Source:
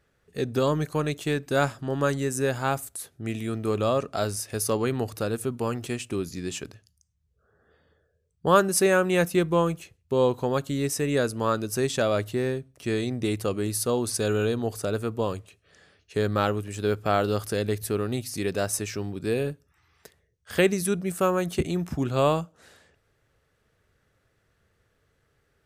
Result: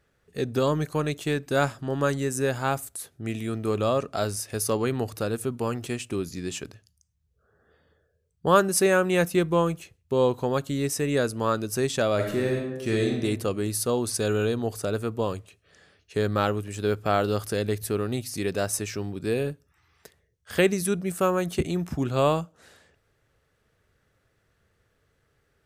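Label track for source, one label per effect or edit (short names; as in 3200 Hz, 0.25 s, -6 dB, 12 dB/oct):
12.150000	13.190000	reverb throw, RT60 1 s, DRR 0.5 dB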